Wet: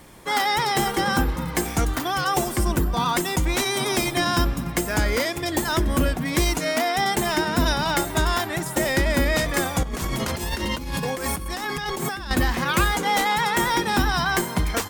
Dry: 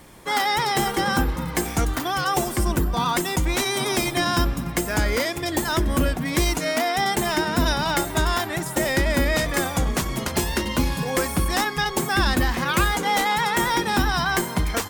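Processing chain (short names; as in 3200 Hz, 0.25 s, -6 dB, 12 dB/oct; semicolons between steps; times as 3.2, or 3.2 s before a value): 9.83–12.31 negative-ratio compressor -28 dBFS, ratio -1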